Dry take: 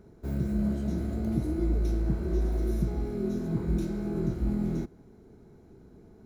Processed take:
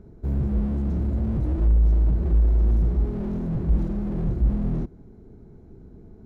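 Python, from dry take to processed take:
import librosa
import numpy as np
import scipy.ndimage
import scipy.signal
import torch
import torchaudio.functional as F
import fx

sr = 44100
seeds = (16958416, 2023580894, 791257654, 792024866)

y = fx.tilt_eq(x, sr, slope=-2.5)
y = fx.slew_limit(y, sr, full_power_hz=11.0)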